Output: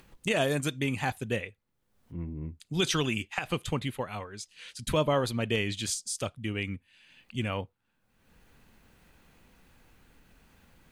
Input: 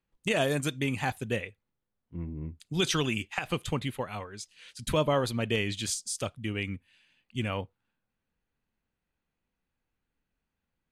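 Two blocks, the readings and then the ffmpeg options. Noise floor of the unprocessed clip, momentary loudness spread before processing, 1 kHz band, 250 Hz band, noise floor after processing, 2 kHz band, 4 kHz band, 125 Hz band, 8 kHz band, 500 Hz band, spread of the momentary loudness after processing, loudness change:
-85 dBFS, 14 LU, 0.0 dB, 0.0 dB, -75 dBFS, 0.0 dB, 0.0 dB, 0.0 dB, 0.0 dB, 0.0 dB, 14 LU, 0.0 dB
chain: -af "acompressor=mode=upward:threshold=-39dB:ratio=2.5"

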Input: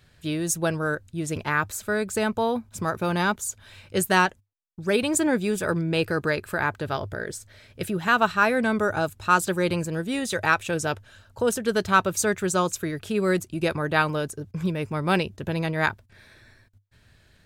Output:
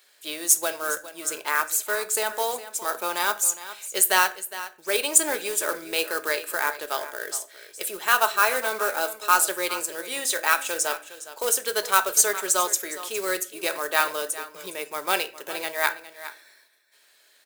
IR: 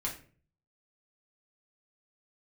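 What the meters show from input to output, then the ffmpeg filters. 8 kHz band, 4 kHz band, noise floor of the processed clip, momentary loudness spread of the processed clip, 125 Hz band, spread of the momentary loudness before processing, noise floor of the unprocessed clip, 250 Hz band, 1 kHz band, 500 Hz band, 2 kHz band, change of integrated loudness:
+9.0 dB, +4.0 dB, -59 dBFS, 12 LU, under -25 dB, 9 LU, -59 dBFS, -14.5 dB, 0.0 dB, -3.5 dB, 0.0 dB, +1.0 dB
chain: -filter_complex "[0:a]highpass=f=420:w=0.5412,highpass=f=420:w=1.3066,acrusher=bits=4:mode=log:mix=0:aa=0.000001,aecho=1:1:411:0.188,asplit=2[a][b];[1:a]atrim=start_sample=2205[c];[b][c]afir=irnorm=-1:irlink=0,volume=-8dB[d];[a][d]amix=inputs=2:normalize=0,crystalizer=i=2.5:c=0,volume=-4dB"

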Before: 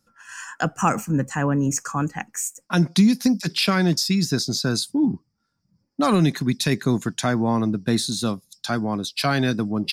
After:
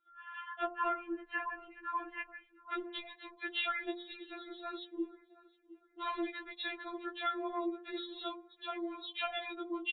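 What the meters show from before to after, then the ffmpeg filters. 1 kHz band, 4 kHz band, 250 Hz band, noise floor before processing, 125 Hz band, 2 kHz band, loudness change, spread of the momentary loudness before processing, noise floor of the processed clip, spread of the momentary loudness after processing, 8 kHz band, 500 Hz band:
-11.5 dB, -16.0 dB, -22.0 dB, -73 dBFS, under -40 dB, -11.0 dB, -17.5 dB, 9 LU, -68 dBFS, 11 LU, under -40 dB, -15.0 dB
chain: -filter_complex "[0:a]asplit=2[a][b];[b]adelay=714,lowpass=f=1.8k:p=1,volume=-22dB,asplit=2[c][d];[d]adelay=714,lowpass=f=1.8k:p=1,volume=0.4,asplit=2[e][f];[f]adelay=714,lowpass=f=1.8k:p=1,volume=0.4[g];[c][e][g]amix=inputs=3:normalize=0[h];[a][h]amix=inputs=2:normalize=0,afreqshift=15,aeval=exprs='0.501*(cos(1*acos(clip(val(0)/0.501,-1,1)))-cos(1*PI/2))+0.00398*(cos(2*acos(clip(val(0)/0.501,-1,1)))-cos(2*PI/2))+0.0158*(cos(5*acos(clip(val(0)/0.501,-1,1)))-cos(5*PI/2))':c=same,acompressor=threshold=-21dB:ratio=3,lowshelf=f=470:g=-4.5,aresample=8000,aresample=44100,equalizer=f=250:w=1.6:g=-7,bandreject=f=87.53:t=h:w=4,bandreject=f=175.06:t=h:w=4,bandreject=f=262.59:t=h:w=4,bandreject=f=350.12:t=h:w=4,bandreject=f=437.65:t=h:w=4,bandreject=f=525.18:t=h:w=4,bandreject=f=612.71:t=h:w=4,bandreject=f=700.24:t=h:w=4,bandreject=f=787.77:t=h:w=4,bandreject=f=875.3:t=h:w=4,bandreject=f=962.83:t=h:w=4,bandreject=f=1.05036k:t=h:w=4,bandreject=f=1.13789k:t=h:w=4,bandreject=f=1.22542k:t=h:w=4,bandreject=f=1.31295k:t=h:w=4,bandreject=f=1.40048k:t=h:w=4,bandreject=f=1.48801k:t=h:w=4,bandreject=f=1.57554k:t=h:w=4,bandreject=f=1.66307k:t=h:w=4,bandreject=f=1.7506k:t=h:w=4,bandreject=f=1.83813k:t=h:w=4,bandreject=f=1.92566k:t=h:w=4,bandreject=f=2.01319k:t=h:w=4,bandreject=f=2.10072k:t=h:w=4,bandreject=f=2.18825k:t=h:w=4,bandreject=f=2.27578k:t=h:w=4,bandreject=f=2.36331k:t=h:w=4,bandreject=f=2.45084k:t=h:w=4,bandreject=f=2.53837k:t=h:w=4,afftfilt=real='re*4*eq(mod(b,16),0)':imag='im*4*eq(mod(b,16),0)':win_size=2048:overlap=0.75,volume=-5dB"

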